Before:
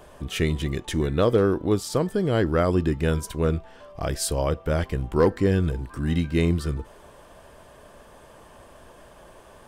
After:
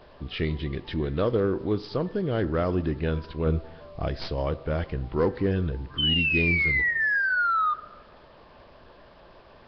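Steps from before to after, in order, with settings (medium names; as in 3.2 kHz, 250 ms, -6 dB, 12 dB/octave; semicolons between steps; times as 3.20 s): tracing distortion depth 0.04 ms; 3.46–4.09 s: bass shelf 490 Hz +5 dB; 5.98–7.74 s: painted sound fall 1.2–3.1 kHz -19 dBFS; in parallel at -6 dB: saturation -20.5 dBFS, distortion -11 dB; on the sum: bit crusher 8-bit; on a send at -16 dB: distance through air 170 m + reverberation RT60 1.1 s, pre-delay 33 ms; on the sum: trim -6.5 dB; Nellymoser 22 kbps 11.025 kHz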